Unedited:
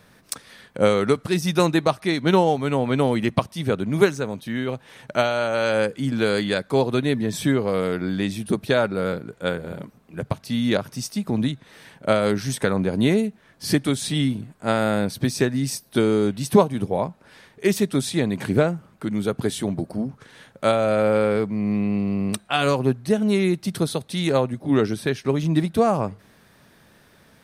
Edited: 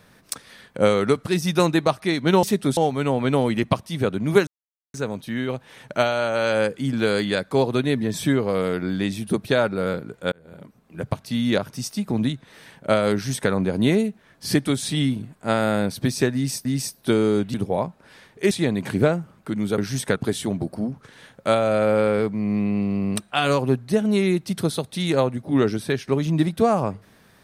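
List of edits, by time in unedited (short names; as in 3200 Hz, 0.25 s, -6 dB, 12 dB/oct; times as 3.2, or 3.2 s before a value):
4.13 insert silence 0.47 s
9.51–10.22 fade in
12.32–12.7 copy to 19.33
15.53–15.84 loop, 2 plays
16.42–16.75 cut
17.72–18.06 move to 2.43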